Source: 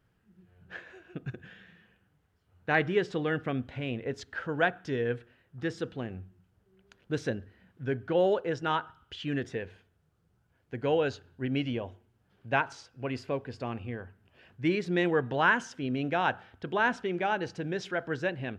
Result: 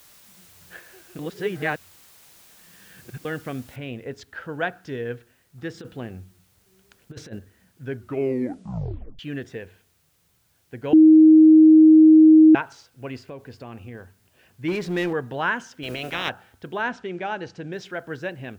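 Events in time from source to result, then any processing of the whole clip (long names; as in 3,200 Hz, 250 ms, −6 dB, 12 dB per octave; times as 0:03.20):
0:01.19–0:03.25: reverse
0:03.76: noise floor change −52 dB −67 dB
0:05.74–0:07.39: compressor whose output falls as the input rises −34 dBFS, ratio −0.5
0:07.93: tape stop 1.26 s
0:10.93–0:12.55: beep over 314 Hz −7.5 dBFS
0:13.28–0:13.95: downward compressor, threshold −33 dBFS
0:14.68–0:15.13: power curve on the samples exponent 0.7
0:15.82–0:16.28: ceiling on every frequency bin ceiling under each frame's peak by 25 dB
0:16.82–0:17.73: low-pass filter 7,300 Hz 24 dB per octave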